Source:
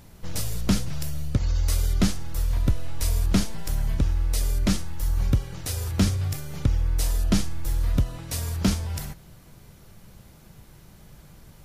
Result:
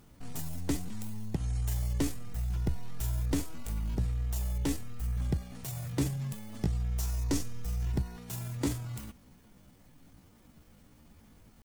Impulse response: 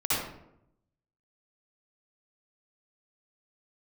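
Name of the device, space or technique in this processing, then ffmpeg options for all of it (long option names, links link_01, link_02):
chipmunk voice: -filter_complex "[0:a]asplit=3[link_01][link_02][link_03];[link_01]afade=type=out:start_time=6.62:duration=0.02[link_04];[link_02]adynamicequalizer=threshold=0.00251:dfrequency=4000:dqfactor=2.5:tfrequency=4000:tqfactor=2.5:attack=5:release=100:ratio=0.375:range=4:mode=boostabove:tftype=bell,afade=type=in:start_time=6.62:duration=0.02,afade=type=out:start_time=7.84:duration=0.02[link_05];[link_03]afade=type=in:start_time=7.84:duration=0.02[link_06];[link_04][link_05][link_06]amix=inputs=3:normalize=0,asetrate=64194,aresample=44100,atempo=0.686977,volume=-9dB"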